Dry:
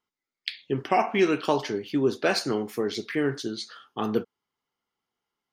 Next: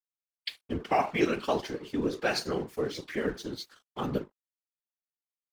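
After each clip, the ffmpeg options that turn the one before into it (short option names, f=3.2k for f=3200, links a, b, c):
-af "bandreject=f=50:t=h:w=6,bandreject=f=100:t=h:w=6,bandreject=f=150:t=h:w=6,bandreject=f=200:t=h:w=6,bandreject=f=250:t=h:w=6,bandreject=f=300:t=h:w=6,bandreject=f=350:t=h:w=6,bandreject=f=400:t=h:w=6,aeval=exprs='sgn(val(0))*max(abs(val(0))-0.00562,0)':c=same,afftfilt=real='hypot(re,im)*cos(2*PI*random(0))':imag='hypot(re,im)*sin(2*PI*random(1))':win_size=512:overlap=0.75,volume=2.5dB"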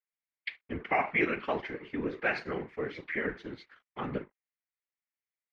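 -af "lowpass=f=2.1k:t=q:w=4,volume=-4.5dB"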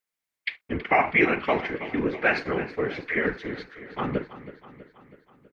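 -af "aecho=1:1:324|648|972|1296|1620|1944:0.188|0.107|0.0612|0.0349|0.0199|0.0113,volume=7.5dB"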